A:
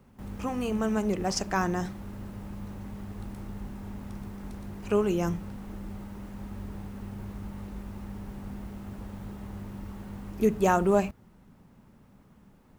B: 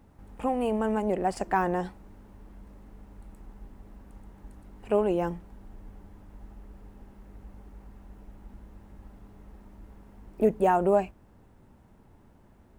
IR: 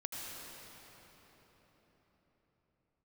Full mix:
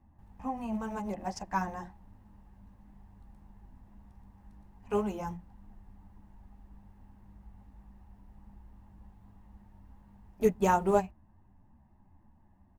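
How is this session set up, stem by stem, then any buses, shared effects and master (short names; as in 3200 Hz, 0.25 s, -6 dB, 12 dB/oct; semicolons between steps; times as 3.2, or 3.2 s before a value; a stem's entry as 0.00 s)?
+1.0 dB, 0.00 s, no send, upward expander 2.5:1, over -35 dBFS
-6.5 dB, 0.8 ms, no send, Gaussian blur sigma 3.9 samples; comb 1.1 ms, depth 90%; ensemble effect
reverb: off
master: dry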